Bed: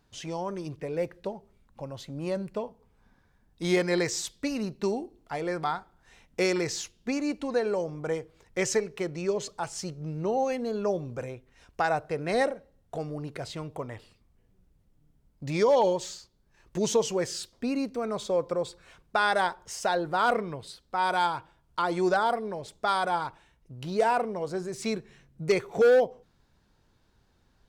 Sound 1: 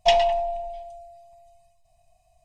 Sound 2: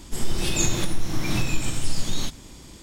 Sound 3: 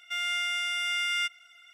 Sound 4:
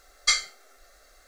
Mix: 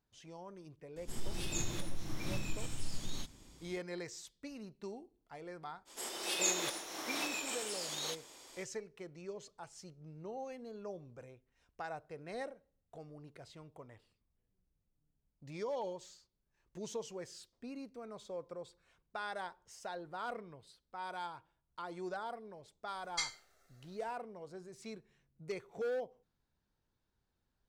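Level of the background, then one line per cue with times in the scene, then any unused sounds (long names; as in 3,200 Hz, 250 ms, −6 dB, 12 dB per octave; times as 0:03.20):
bed −17 dB
0:00.96: mix in 2 −14.5 dB
0:05.85: mix in 2 −2 dB, fades 0.05 s + four-pole ladder high-pass 380 Hz, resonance 20%
0:22.90: mix in 4 −15 dB
not used: 1, 3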